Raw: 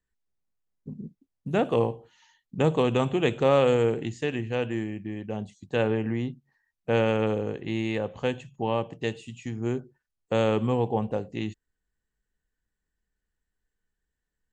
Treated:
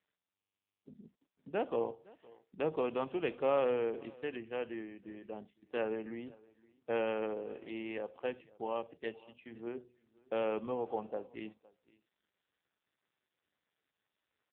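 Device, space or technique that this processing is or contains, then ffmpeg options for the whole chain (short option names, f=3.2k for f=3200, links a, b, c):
satellite phone: -filter_complex "[0:a]asplit=3[a][b][c];[a]afade=t=out:st=8.7:d=0.02[d];[b]bandreject=f=122.1:t=h:w=4,bandreject=f=244.2:t=h:w=4,bandreject=f=366.3:t=h:w=4,bandreject=f=488.4:t=h:w=4,afade=t=in:st=8.7:d=0.02,afade=t=out:st=10.36:d=0.02[e];[c]afade=t=in:st=10.36:d=0.02[f];[d][e][f]amix=inputs=3:normalize=0,highpass=310,lowpass=3.3k,aecho=1:1:513:0.0668,volume=-8dB" -ar 8000 -c:a libopencore_amrnb -b:a 5900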